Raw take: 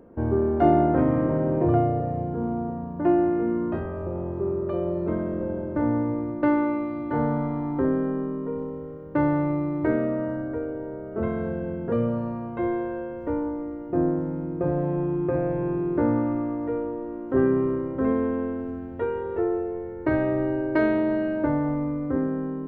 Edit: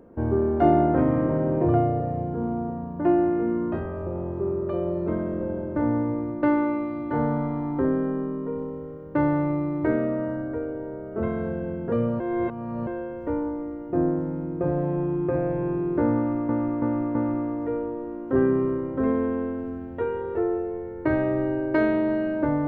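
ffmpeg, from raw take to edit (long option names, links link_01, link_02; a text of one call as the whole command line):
ffmpeg -i in.wav -filter_complex "[0:a]asplit=6[link_01][link_02][link_03][link_04][link_05][link_06];[link_01]atrim=end=12.202[link_07];[link_02]atrim=start=12.198:end=12.872,asetpts=PTS-STARTPTS,areverse[link_08];[link_03]atrim=start=12.868:end=16.492[link_09];[link_04]atrim=start=16.158:end=16.492[link_10];[link_05]atrim=start=16.158:end=16.492[link_11];[link_06]atrim=start=16.158[link_12];[link_07][link_08]acrossfade=duration=0.004:curve1=hsin:curve2=hsin[link_13];[link_13][link_09]acrossfade=duration=0.004:curve1=hsin:curve2=hsin[link_14];[link_14][link_10]acrossfade=duration=0.004:curve1=hsin:curve2=hsin[link_15];[link_15][link_11]acrossfade=duration=0.004:curve1=hsin:curve2=hsin[link_16];[link_16][link_12]acrossfade=duration=0.004:curve1=hsin:curve2=hsin" out.wav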